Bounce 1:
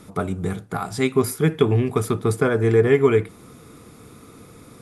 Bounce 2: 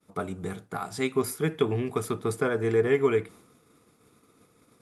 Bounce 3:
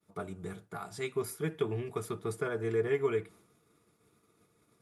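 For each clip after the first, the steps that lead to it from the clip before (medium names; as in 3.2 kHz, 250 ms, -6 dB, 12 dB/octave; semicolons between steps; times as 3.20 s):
expander -37 dBFS; bass shelf 150 Hz -9.5 dB; trim -5.5 dB
comb of notches 260 Hz; trim -6.5 dB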